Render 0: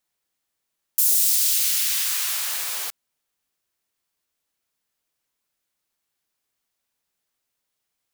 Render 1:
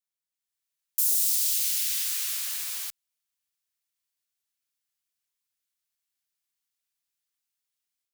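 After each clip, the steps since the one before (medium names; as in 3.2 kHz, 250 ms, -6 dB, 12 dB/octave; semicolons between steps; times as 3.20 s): amplifier tone stack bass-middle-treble 5-5-5; level rider gain up to 7.5 dB; trim -6.5 dB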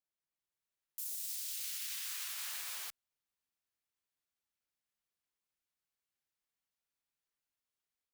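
treble shelf 2.5 kHz -11.5 dB; peak limiter -32.5 dBFS, peak gain reduction 9.5 dB; trim +1 dB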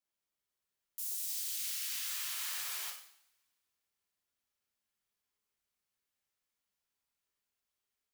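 two-slope reverb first 0.61 s, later 2 s, from -27 dB, DRR 0 dB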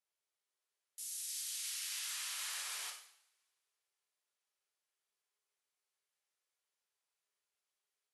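brick-wall FIR band-pass 340–12000 Hz; trim -1 dB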